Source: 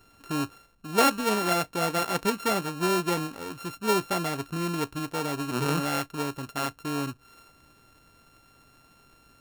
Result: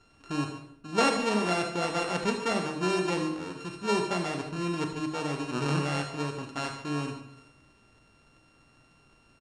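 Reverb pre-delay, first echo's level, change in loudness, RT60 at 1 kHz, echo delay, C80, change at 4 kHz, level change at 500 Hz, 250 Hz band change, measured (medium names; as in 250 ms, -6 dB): 28 ms, -12.0 dB, -2.0 dB, 0.65 s, 76 ms, 9.0 dB, -2.0 dB, -1.5 dB, -1.0 dB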